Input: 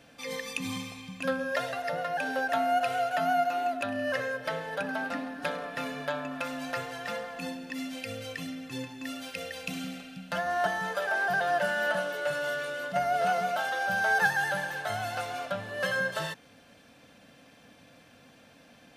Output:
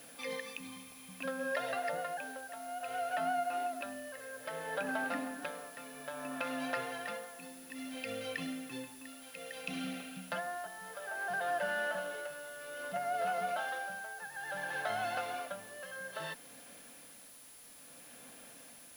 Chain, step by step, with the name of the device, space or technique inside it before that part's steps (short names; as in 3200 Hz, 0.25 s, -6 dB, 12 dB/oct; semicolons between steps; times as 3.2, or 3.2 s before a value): medium wave at night (BPF 200–3900 Hz; compressor, threshold -31 dBFS, peak gain reduction 11 dB; tremolo 0.6 Hz, depth 77%; whine 10000 Hz -56 dBFS; white noise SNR 18 dB)